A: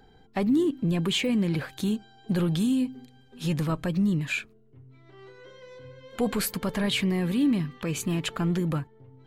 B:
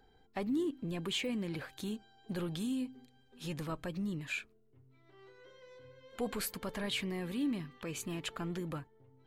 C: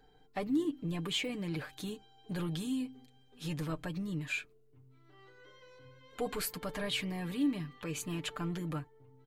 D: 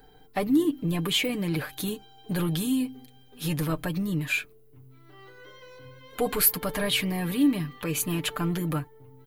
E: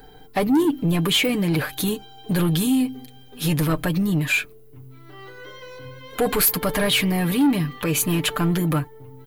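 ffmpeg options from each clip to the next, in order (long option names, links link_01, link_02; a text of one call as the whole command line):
ffmpeg -i in.wav -af "equalizer=frequency=160:width_type=o:width=1.2:gain=-6,volume=-8.5dB" out.wav
ffmpeg -i in.wav -af "aecho=1:1:6.7:0.61" out.wav
ffmpeg -i in.wav -af "aexciter=amount=4.5:drive=3.6:freq=10000,volume=9dB" out.wav
ffmpeg -i in.wav -af "asoftclip=type=tanh:threshold=-22dB,volume=8.5dB" out.wav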